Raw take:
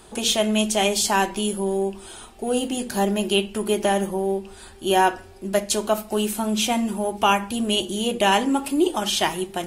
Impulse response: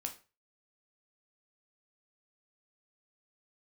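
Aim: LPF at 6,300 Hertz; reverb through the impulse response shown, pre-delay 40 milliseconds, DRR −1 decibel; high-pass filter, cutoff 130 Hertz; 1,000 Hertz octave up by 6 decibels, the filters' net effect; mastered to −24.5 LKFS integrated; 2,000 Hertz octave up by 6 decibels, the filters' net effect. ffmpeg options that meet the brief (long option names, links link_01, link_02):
-filter_complex "[0:a]highpass=130,lowpass=6300,equalizer=frequency=1000:width_type=o:gain=6.5,equalizer=frequency=2000:width_type=o:gain=6,asplit=2[link_01][link_02];[1:a]atrim=start_sample=2205,adelay=40[link_03];[link_02][link_03]afir=irnorm=-1:irlink=0,volume=2dB[link_04];[link_01][link_04]amix=inputs=2:normalize=0,volume=-9dB"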